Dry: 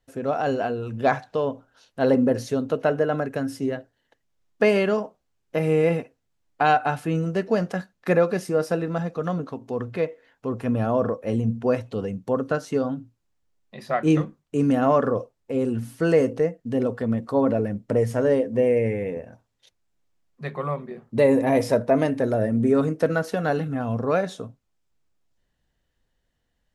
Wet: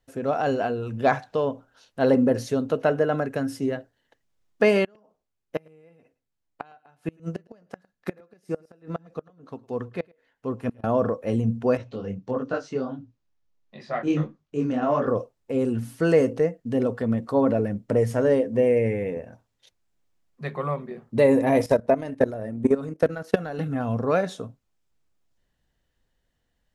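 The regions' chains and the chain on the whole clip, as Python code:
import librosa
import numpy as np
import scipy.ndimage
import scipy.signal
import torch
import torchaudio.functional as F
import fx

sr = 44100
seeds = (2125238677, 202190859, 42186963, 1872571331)

y = fx.chain(x, sr, fx.gate_flip(shuts_db=-15.0, range_db=-25),
    fx.echo_single(ms=108, db=-20.5),
    fx.upward_expand(threshold_db=-40.0, expansion=1.5), at=(4.84, 10.84))
y = fx.chain(y, sr, fx.lowpass(hz=6400.0, slope=24),
    fx.detune_double(cents=52), at=(11.77, 15.08))
y = fx.chain(y, sr, fx.transient(attack_db=10, sustain_db=-5),
    fx.level_steps(step_db=16), at=(21.62, 23.59))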